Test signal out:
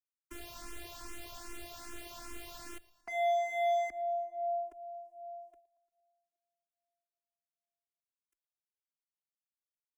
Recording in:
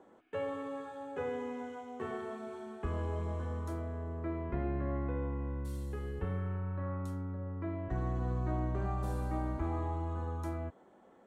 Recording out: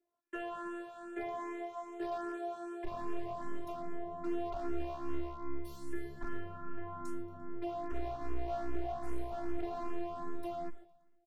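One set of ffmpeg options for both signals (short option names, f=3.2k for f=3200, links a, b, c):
-filter_complex "[0:a]agate=range=-25dB:threshold=-56dB:ratio=16:detection=peak,adynamicequalizer=threshold=0.00398:dfrequency=720:dqfactor=3.8:tfrequency=720:tqfactor=3.8:attack=5:release=100:ratio=0.375:range=2:mode=boostabove:tftype=bell,acrossover=split=150|460[a][b][c];[b]asoftclip=type=tanh:threshold=-40dB[d];[a][d][c]amix=inputs=3:normalize=0,afftfilt=real='hypot(re,im)*cos(PI*b)':imag='0':win_size=512:overlap=0.75,asoftclip=type=hard:threshold=-34dB,aecho=1:1:115|230|345|460|575:0.0891|0.0535|0.0321|0.0193|0.0116,asplit=2[e][f];[f]afreqshift=2.5[g];[e][g]amix=inputs=2:normalize=1,volume=7.5dB"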